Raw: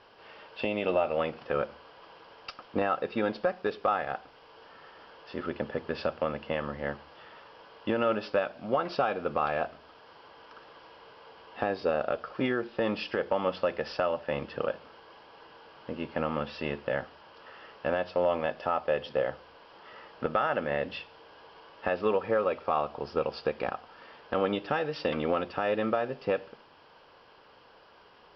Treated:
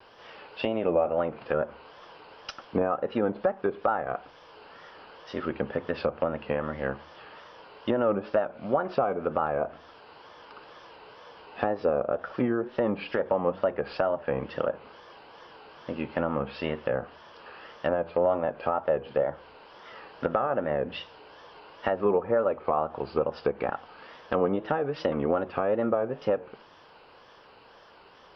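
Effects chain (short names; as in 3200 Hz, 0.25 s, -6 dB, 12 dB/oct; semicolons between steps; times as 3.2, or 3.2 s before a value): treble ducked by the level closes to 1100 Hz, closed at -25.5 dBFS; wow and flutter 120 cents; gain +3 dB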